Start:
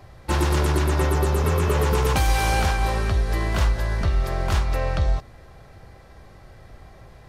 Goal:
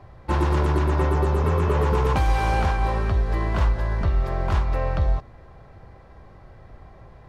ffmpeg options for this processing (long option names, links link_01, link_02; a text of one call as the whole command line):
ffmpeg -i in.wav -af "lowpass=frequency=1600:poles=1,equalizer=frequency=1000:width=4.4:gain=4" out.wav